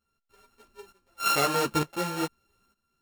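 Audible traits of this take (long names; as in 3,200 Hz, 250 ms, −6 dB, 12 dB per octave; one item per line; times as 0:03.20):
a buzz of ramps at a fixed pitch in blocks of 32 samples
tremolo saw up 1.1 Hz, depth 80%
a shimmering, thickened sound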